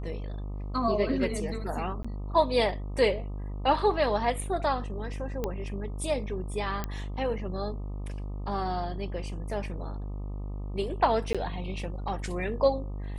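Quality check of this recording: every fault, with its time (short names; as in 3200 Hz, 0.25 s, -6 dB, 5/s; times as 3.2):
buzz 50 Hz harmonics 25 -35 dBFS
2.03–2.04 gap 15 ms
5.44 pop -17 dBFS
6.84 pop -17 dBFS
11.33–11.35 gap 16 ms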